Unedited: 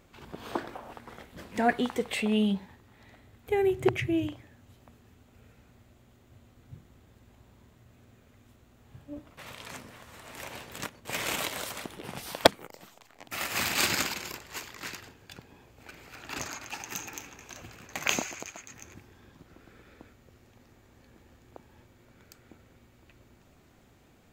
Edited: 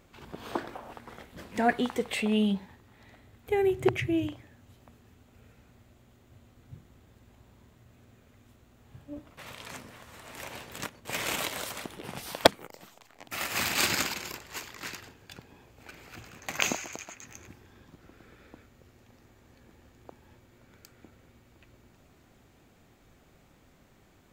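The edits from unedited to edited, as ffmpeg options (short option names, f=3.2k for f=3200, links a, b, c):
-filter_complex "[0:a]asplit=2[a][b];[a]atrim=end=16.162[c];[b]atrim=start=17.628[d];[c][d]acrossfade=d=0.004:c1=hsin:c2=hsin"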